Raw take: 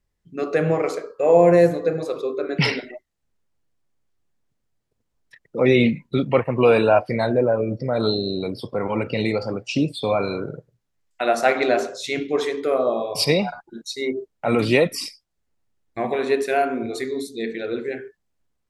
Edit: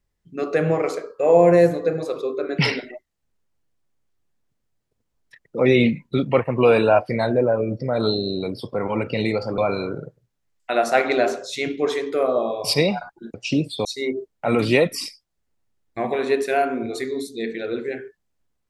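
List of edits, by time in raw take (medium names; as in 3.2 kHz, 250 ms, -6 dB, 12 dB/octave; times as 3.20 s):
9.58–10.09 s: move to 13.85 s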